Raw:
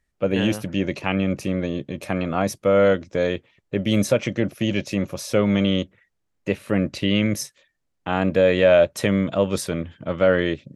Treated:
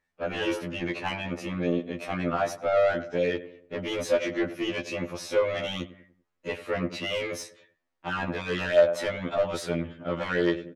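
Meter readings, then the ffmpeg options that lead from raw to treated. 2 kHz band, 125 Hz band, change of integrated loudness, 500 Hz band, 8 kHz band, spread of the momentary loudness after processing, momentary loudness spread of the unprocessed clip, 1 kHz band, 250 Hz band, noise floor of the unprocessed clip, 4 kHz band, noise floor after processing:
−4.0 dB, −11.0 dB, −7.0 dB, −6.0 dB, −8.5 dB, 11 LU, 11 LU, −3.5 dB, −10.0 dB, −74 dBFS, −5.5 dB, −79 dBFS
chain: -filter_complex "[0:a]asplit=2[link_01][link_02];[link_02]adelay=97,lowpass=frequency=1500:poles=1,volume=-16.5dB,asplit=2[link_03][link_04];[link_04]adelay=97,lowpass=frequency=1500:poles=1,volume=0.44,asplit=2[link_05][link_06];[link_06]adelay=97,lowpass=frequency=1500:poles=1,volume=0.44,asplit=2[link_07][link_08];[link_08]adelay=97,lowpass=frequency=1500:poles=1,volume=0.44[link_09];[link_01][link_03][link_05][link_07][link_09]amix=inputs=5:normalize=0,asplit=2[link_10][link_11];[link_11]highpass=frequency=720:poles=1,volume=20dB,asoftclip=type=tanh:threshold=-4.5dB[link_12];[link_10][link_12]amix=inputs=2:normalize=0,lowpass=frequency=1700:poles=1,volume=-6dB,afftfilt=real='re*2*eq(mod(b,4),0)':imag='im*2*eq(mod(b,4),0)':win_size=2048:overlap=0.75,volume=-7.5dB"

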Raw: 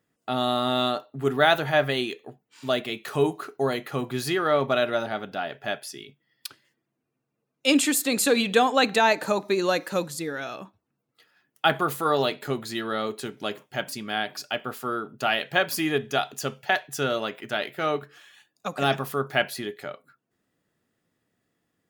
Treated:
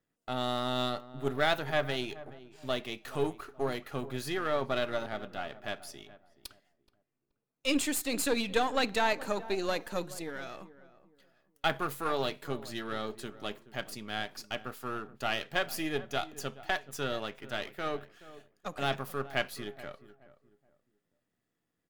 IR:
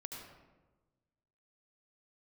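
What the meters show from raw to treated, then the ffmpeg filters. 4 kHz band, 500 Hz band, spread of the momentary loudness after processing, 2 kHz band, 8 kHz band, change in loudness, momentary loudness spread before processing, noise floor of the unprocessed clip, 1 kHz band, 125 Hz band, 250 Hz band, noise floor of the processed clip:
−7.5 dB, −8.5 dB, 14 LU, −8.0 dB, −8.5 dB, −8.5 dB, 13 LU, −80 dBFS, −8.5 dB, −7.0 dB, −8.5 dB, −84 dBFS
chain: -filter_complex "[0:a]aeval=exprs='if(lt(val(0),0),0.447*val(0),val(0))':channel_layout=same,asplit=2[link_01][link_02];[link_02]adelay=426,lowpass=frequency=1100:poles=1,volume=-15.5dB,asplit=2[link_03][link_04];[link_04]adelay=426,lowpass=frequency=1100:poles=1,volume=0.32,asplit=2[link_05][link_06];[link_06]adelay=426,lowpass=frequency=1100:poles=1,volume=0.32[link_07];[link_01][link_03][link_05][link_07]amix=inputs=4:normalize=0,volume=-6dB"

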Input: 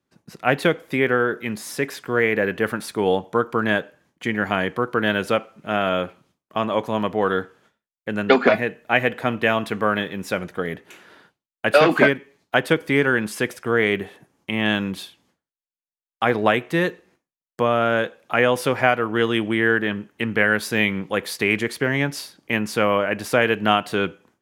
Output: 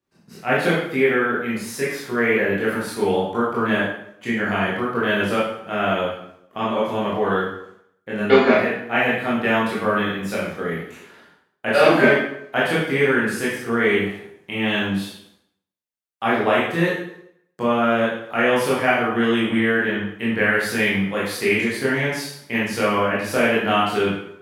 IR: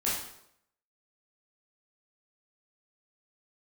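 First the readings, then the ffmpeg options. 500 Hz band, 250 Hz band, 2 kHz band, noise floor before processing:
+1.0 dB, +2.0 dB, +1.0 dB, below −85 dBFS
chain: -filter_complex "[1:a]atrim=start_sample=2205[link_01];[0:a][link_01]afir=irnorm=-1:irlink=0,volume=-6.5dB"

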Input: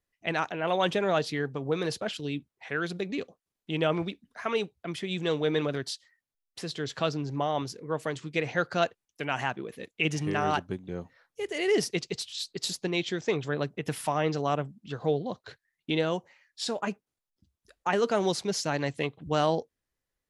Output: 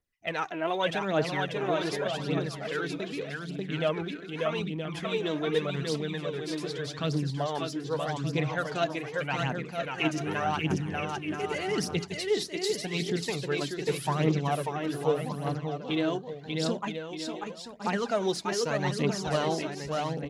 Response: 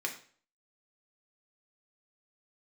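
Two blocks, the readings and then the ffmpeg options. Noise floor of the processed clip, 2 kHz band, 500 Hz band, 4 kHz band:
−42 dBFS, −0.5 dB, −0.5 dB, 0.0 dB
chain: -filter_complex "[0:a]aecho=1:1:590|973.5|1223|1385|1490:0.631|0.398|0.251|0.158|0.1,asplit=2[link_01][link_02];[link_02]asubboost=boost=11.5:cutoff=240[link_03];[1:a]atrim=start_sample=2205,atrim=end_sample=3969[link_04];[link_03][link_04]afir=irnorm=-1:irlink=0,volume=-19.5dB[link_05];[link_01][link_05]amix=inputs=2:normalize=0,aphaser=in_gain=1:out_gain=1:delay=3.3:decay=0.53:speed=0.84:type=triangular,volume=-4.5dB"

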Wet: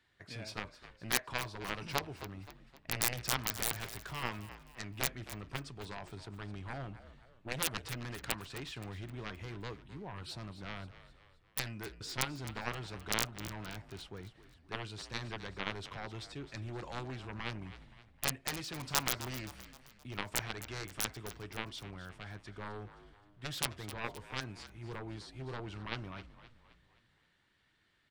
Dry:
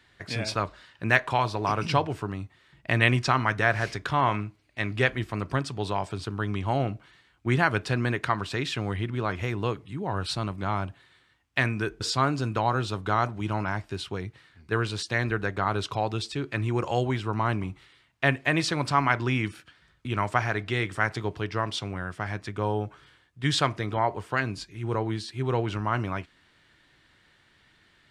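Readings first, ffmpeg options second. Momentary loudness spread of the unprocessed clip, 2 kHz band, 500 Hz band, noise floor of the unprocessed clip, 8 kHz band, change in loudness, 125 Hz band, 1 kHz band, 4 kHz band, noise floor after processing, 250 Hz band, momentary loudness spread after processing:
10 LU, −13.5 dB, −16.0 dB, −63 dBFS, +1.5 dB, −12.0 dB, −15.5 dB, −16.0 dB, −7.0 dB, −69 dBFS, −15.0 dB, 14 LU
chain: -filter_complex "[0:a]aeval=exprs='0.668*(cos(1*acos(clip(val(0)/0.668,-1,1)))-cos(1*PI/2))+0.211*(cos(3*acos(clip(val(0)/0.668,-1,1)))-cos(3*PI/2))+0.0168*(cos(7*acos(clip(val(0)/0.668,-1,1)))-cos(7*PI/2))':channel_layout=same,aeval=exprs='(mod(8.91*val(0)+1,2)-1)/8.91':channel_layout=same,asplit=6[link_01][link_02][link_03][link_04][link_05][link_06];[link_02]adelay=261,afreqshift=-59,volume=-14dB[link_07];[link_03]adelay=522,afreqshift=-118,volume=-20.4dB[link_08];[link_04]adelay=783,afreqshift=-177,volume=-26.8dB[link_09];[link_05]adelay=1044,afreqshift=-236,volume=-33.1dB[link_10];[link_06]adelay=1305,afreqshift=-295,volume=-39.5dB[link_11];[link_01][link_07][link_08][link_09][link_10][link_11]amix=inputs=6:normalize=0,volume=5.5dB"

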